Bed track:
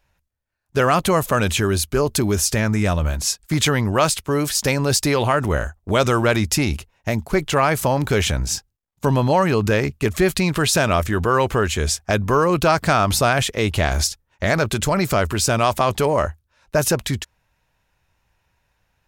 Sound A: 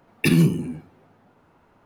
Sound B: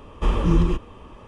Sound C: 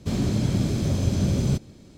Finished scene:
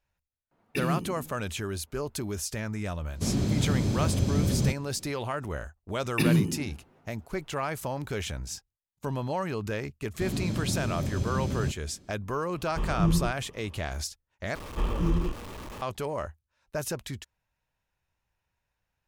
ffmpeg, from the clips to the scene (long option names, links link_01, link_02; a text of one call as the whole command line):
ffmpeg -i bed.wav -i cue0.wav -i cue1.wav -i cue2.wav -filter_complex "[1:a]asplit=2[link_01][link_02];[3:a]asplit=2[link_03][link_04];[2:a]asplit=2[link_05][link_06];[0:a]volume=-14dB[link_07];[link_05]equalizer=frequency=150:width=3:gain=13[link_08];[link_06]aeval=exprs='val(0)+0.5*0.0376*sgn(val(0))':channel_layout=same[link_09];[link_07]asplit=2[link_10][link_11];[link_10]atrim=end=14.554[link_12];[link_09]atrim=end=1.27,asetpts=PTS-STARTPTS,volume=-8.5dB[link_13];[link_11]atrim=start=15.816[link_14];[link_01]atrim=end=1.85,asetpts=PTS-STARTPTS,volume=-12.5dB,afade=type=in:duration=0.004:curve=hsin,afade=type=out:start_time=1.846:duration=0.004:curve=hsin,adelay=510[link_15];[link_03]atrim=end=1.97,asetpts=PTS-STARTPTS,volume=-3dB,afade=type=in:duration=0.004:curve=hsin,afade=type=out:start_time=1.966:duration=0.004:curve=hsin,adelay=3150[link_16];[link_02]atrim=end=1.85,asetpts=PTS-STARTPTS,volume=-6dB,afade=type=in:duration=0.004:curve=hsin,afade=type=out:start_time=1.846:duration=0.004:curve=hsin,adelay=5940[link_17];[link_04]atrim=end=1.97,asetpts=PTS-STARTPTS,volume=-7.5dB,afade=type=in:duration=0.004:curve=hsin,afade=type=out:start_time=1.966:duration=0.004:curve=hsin,adelay=10140[link_18];[link_08]atrim=end=1.27,asetpts=PTS-STARTPTS,volume=-11dB,afade=type=in:duration=0.004:curve=hsin,afade=type=out:start_time=1.266:duration=0.004:curve=hsin,adelay=12540[link_19];[link_12][link_13]acrossfade=duration=0.004:curve1=hsin:curve2=hsin[link_20];[link_20][link_14]acrossfade=duration=0.004:curve1=hsin:curve2=hsin[link_21];[link_21][link_15][link_16][link_17][link_18][link_19]amix=inputs=6:normalize=0" out.wav